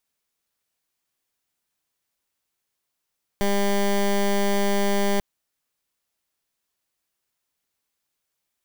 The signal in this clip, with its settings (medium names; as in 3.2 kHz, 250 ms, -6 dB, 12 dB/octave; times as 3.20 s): pulse 200 Hz, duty 15% -20.5 dBFS 1.79 s